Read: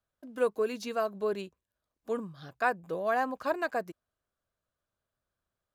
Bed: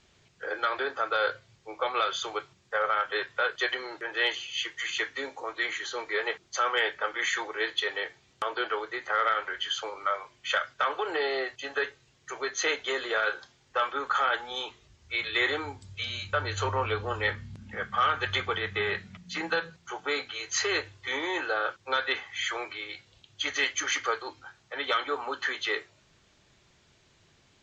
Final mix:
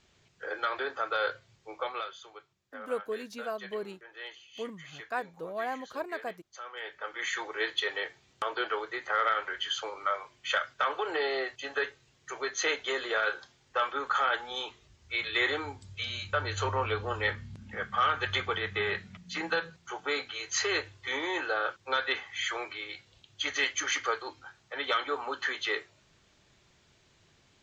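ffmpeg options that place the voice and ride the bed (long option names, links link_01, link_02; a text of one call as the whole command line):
ffmpeg -i stem1.wav -i stem2.wav -filter_complex "[0:a]adelay=2500,volume=-5.5dB[link_01];[1:a]volume=12dB,afade=type=out:start_time=1.74:duration=0.41:silence=0.211349,afade=type=in:start_time=6.75:duration=0.85:silence=0.177828[link_02];[link_01][link_02]amix=inputs=2:normalize=0" out.wav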